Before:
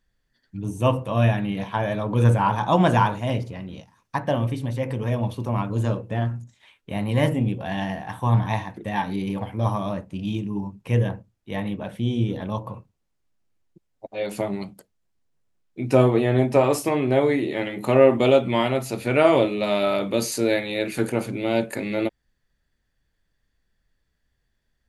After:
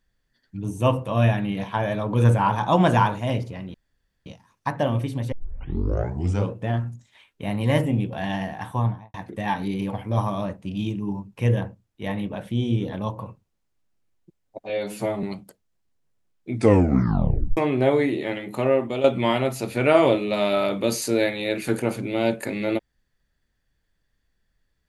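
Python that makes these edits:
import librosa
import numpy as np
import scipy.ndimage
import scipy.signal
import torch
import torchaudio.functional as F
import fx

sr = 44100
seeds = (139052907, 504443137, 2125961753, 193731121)

y = fx.studio_fade_out(x, sr, start_s=8.14, length_s=0.48)
y = fx.edit(y, sr, fx.insert_room_tone(at_s=3.74, length_s=0.52),
    fx.tape_start(start_s=4.8, length_s=1.22),
    fx.stretch_span(start_s=14.17, length_s=0.36, factor=1.5),
    fx.tape_stop(start_s=15.81, length_s=1.06),
    fx.fade_out_to(start_s=17.39, length_s=0.95, floor_db=-10.5), tone=tone)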